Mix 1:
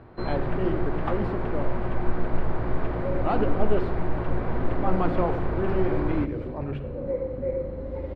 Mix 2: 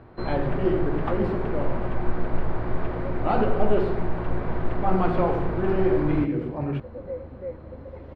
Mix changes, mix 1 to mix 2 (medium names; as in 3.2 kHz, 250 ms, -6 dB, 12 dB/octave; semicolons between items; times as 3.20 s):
speech: send +8.0 dB; second sound: send off